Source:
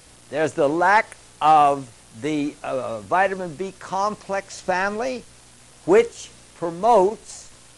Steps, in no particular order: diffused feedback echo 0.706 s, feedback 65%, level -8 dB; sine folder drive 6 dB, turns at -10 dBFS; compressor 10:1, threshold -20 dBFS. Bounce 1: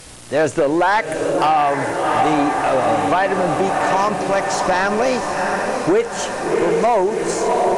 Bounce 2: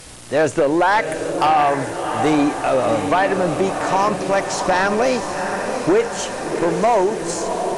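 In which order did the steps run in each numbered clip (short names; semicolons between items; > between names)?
diffused feedback echo > compressor > sine folder; compressor > diffused feedback echo > sine folder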